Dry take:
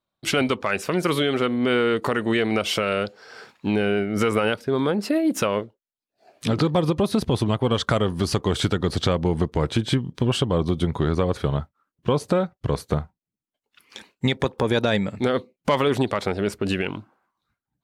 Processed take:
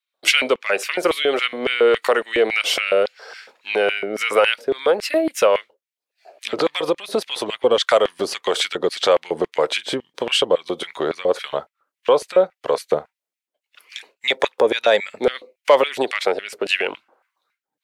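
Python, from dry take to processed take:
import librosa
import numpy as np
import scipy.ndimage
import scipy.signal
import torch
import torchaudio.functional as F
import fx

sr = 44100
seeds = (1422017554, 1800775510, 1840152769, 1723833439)

y = fx.filter_lfo_highpass(x, sr, shape='square', hz=3.6, low_hz=520.0, high_hz=2200.0, q=2.4)
y = fx.harmonic_tremolo(y, sr, hz=1.7, depth_pct=50, crossover_hz=560.0)
y = y * librosa.db_to_amplitude(5.5)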